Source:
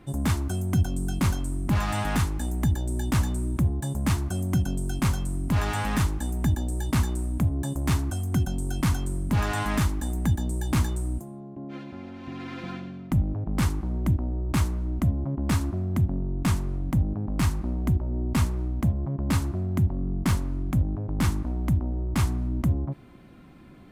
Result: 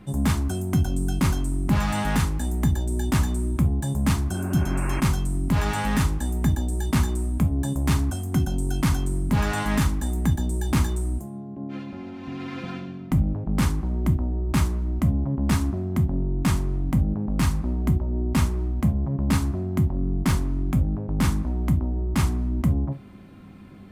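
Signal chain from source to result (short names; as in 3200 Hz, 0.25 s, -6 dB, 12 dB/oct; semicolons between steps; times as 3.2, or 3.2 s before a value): buzz 100 Hz, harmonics 3, -50 dBFS; non-linear reverb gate 90 ms falling, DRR 8 dB; spectral repair 4.36–4.98, 280–2800 Hz both; gain +1.5 dB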